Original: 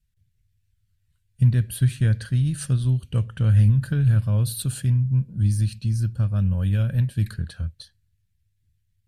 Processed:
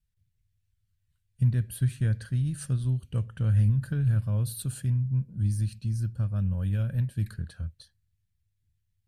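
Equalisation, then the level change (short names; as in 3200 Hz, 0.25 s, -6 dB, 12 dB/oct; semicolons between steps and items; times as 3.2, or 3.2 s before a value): dynamic EQ 3400 Hz, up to -4 dB, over -55 dBFS, Q 1; -6.0 dB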